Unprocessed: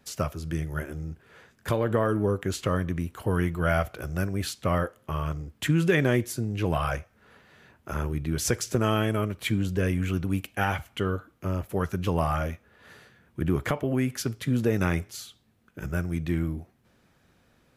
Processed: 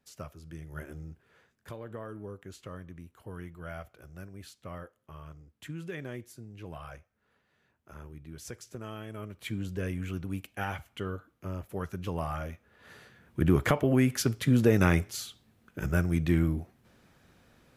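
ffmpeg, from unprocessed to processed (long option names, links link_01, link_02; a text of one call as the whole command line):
ffmpeg -i in.wav -af "volume=12dB,afade=type=in:start_time=0.61:duration=0.29:silence=0.446684,afade=type=out:start_time=0.9:duration=0.84:silence=0.316228,afade=type=in:start_time=9.06:duration=0.57:silence=0.354813,afade=type=in:start_time=12.47:duration=0.95:silence=0.316228" out.wav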